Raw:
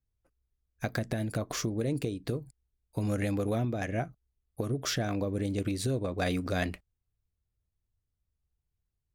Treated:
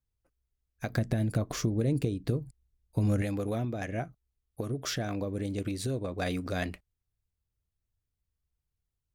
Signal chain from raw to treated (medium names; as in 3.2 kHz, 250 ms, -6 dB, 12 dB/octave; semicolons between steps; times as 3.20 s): 0.90–3.22 s: bass shelf 280 Hz +8.5 dB; trim -2 dB